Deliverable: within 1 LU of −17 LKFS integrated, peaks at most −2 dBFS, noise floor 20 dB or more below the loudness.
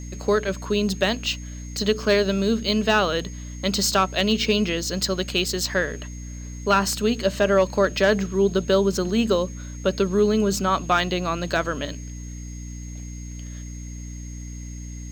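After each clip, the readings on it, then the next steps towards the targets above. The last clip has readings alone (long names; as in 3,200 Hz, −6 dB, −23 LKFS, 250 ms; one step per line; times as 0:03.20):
mains hum 60 Hz; hum harmonics up to 300 Hz; level of the hum −32 dBFS; interfering tone 6,500 Hz; level of the tone −44 dBFS; integrated loudness −22.5 LKFS; sample peak −8.5 dBFS; target loudness −17.0 LKFS
→ mains-hum notches 60/120/180/240/300 Hz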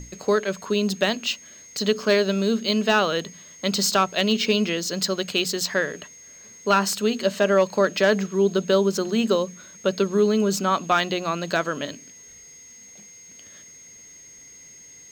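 mains hum none found; interfering tone 6,500 Hz; level of the tone −44 dBFS
→ notch filter 6,500 Hz, Q 30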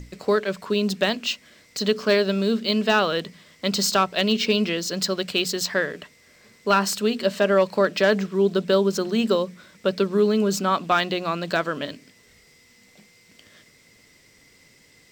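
interfering tone none found; integrated loudness −22.5 LKFS; sample peak −8.5 dBFS; target loudness −17.0 LKFS
→ level +5.5 dB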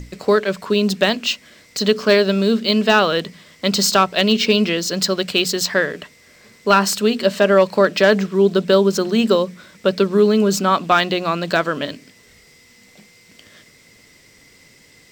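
integrated loudness −17.0 LKFS; sample peak −3.0 dBFS; background noise floor −50 dBFS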